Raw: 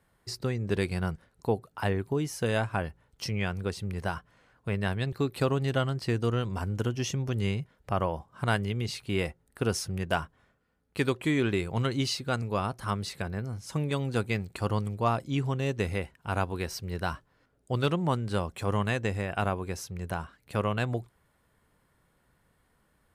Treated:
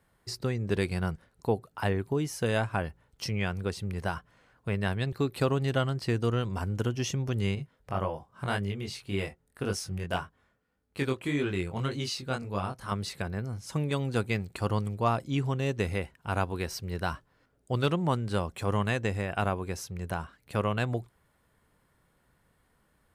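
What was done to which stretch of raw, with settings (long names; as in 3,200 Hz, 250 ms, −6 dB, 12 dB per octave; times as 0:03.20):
0:07.55–0:12.92: chorus effect 1.8 Hz, delay 20 ms, depth 3.3 ms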